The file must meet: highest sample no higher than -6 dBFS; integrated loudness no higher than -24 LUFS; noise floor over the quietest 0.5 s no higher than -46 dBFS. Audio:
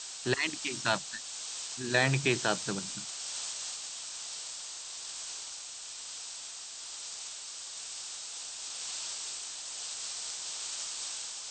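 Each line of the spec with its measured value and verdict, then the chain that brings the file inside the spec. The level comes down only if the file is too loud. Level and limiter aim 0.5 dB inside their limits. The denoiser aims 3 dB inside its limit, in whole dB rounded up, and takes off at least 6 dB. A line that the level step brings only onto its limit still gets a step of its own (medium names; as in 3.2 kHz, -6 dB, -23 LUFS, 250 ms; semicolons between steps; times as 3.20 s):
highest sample -11.5 dBFS: pass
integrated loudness -34.5 LUFS: pass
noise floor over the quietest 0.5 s -44 dBFS: fail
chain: noise reduction 6 dB, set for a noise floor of -44 dBFS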